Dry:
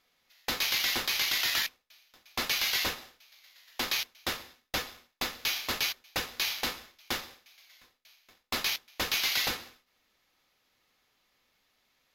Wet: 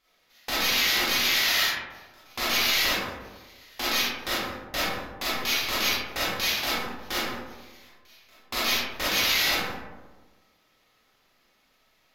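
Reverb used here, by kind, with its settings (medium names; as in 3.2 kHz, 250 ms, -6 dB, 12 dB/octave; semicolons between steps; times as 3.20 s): algorithmic reverb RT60 1.3 s, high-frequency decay 0.35×, pre-delay 0 ms, DRR -9.5 dB; trim -2.5 dB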